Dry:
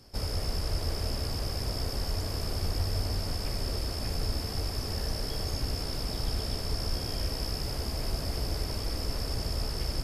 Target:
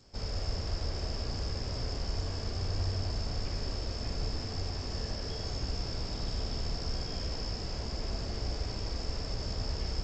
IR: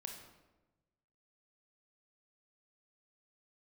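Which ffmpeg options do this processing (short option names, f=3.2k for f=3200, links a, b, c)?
-filter_complex "[1:a]atrim=start_sample=2205[a];[0:a][a]afir=irnorm=-1:irlink=0" -ar 16000 -c:a g722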